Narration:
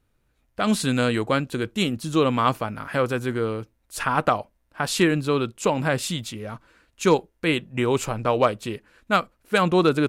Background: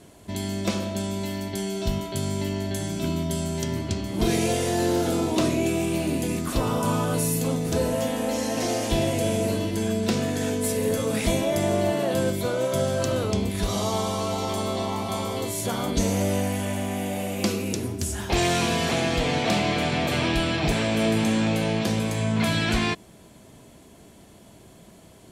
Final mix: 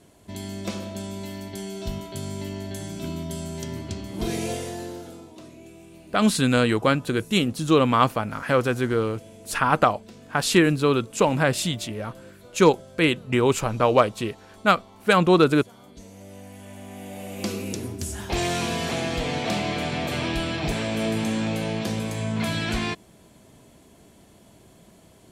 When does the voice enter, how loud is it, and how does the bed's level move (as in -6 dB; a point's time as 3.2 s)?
5.55 s, +2.0 dB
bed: 4.53 s -5 dB
5.35 s -22 dB
16.11 s -22 dB
17.57 s -3 dB